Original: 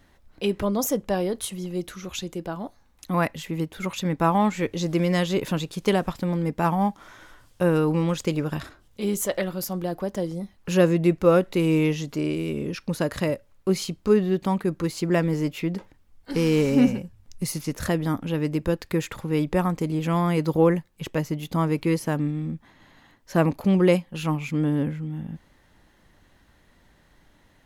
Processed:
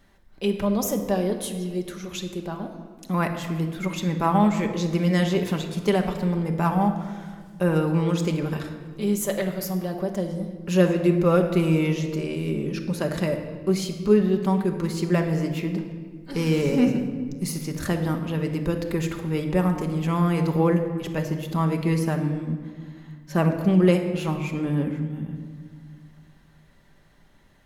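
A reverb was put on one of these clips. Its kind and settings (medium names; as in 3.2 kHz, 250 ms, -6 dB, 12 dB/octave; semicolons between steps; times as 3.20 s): simulated room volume 2000 m³, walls mixed, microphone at 1.2 m; trim -2 dB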